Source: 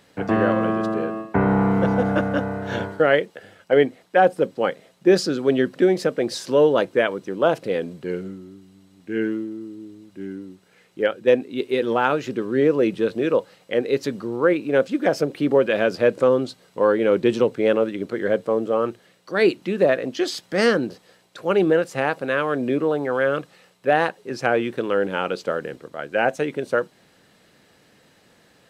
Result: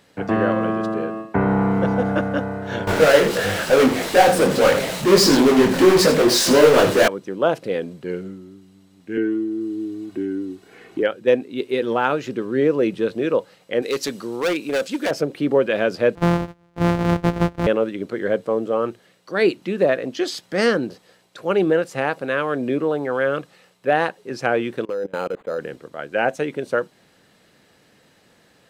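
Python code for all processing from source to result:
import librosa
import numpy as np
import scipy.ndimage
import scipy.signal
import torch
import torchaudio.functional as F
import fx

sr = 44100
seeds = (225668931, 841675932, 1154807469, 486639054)

y = fx.chain(x, sr, fx.power_curve(exponent=0.35),
    fx.echo_single(ms=80, db=-9.5),
    fx.detune_double(cents=56), at=(2.87, 7.08))
y = fx.chain(y, sr, fx.peak_eq(hz=250.0, db=6.0, octaves=1.1),
    fx.comb(ms=2.7, depth=0.58),
    fx.band_squash(depth_pct=70), at=(9.17, 11.03))
y = fx.chain(y, sr, fx.highpass(hz=180.0, slope=6),
    fx.overload_stage(gain_db=18.0),
    fx.high_shelf(hz=2800.0, db=12.0), at=(13.82, 15.11))
y = fx.chain(y, sr, fx.sample_sort(block=256),
    fx.lowpass(hz=1200.0, slope=6), at=(16.15, 17.67))
y = fx.chain(y, sr, fx.peak_eq(hz=500.0, db=8.0, octaves=0.3),
    fx.level_steps(step_db=24),
    fx.resample_linear(factor=8), at=(24.85, 25.59))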